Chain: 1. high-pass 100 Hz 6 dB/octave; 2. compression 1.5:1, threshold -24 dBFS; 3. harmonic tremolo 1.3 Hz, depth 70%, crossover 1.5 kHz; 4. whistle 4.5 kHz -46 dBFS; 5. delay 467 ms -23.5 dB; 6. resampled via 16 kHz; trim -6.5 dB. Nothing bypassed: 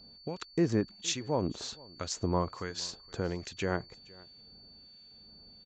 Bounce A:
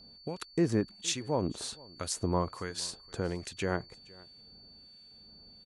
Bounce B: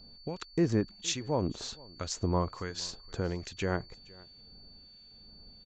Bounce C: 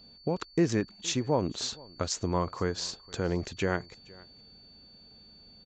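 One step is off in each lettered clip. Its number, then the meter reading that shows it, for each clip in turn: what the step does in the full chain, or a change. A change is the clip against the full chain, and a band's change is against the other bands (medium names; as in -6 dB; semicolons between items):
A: 6, 8 kHz band +2.0 dB; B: 1, 125 Hz band +2.0 dB; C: 3, momentary loudness spread change -13 LU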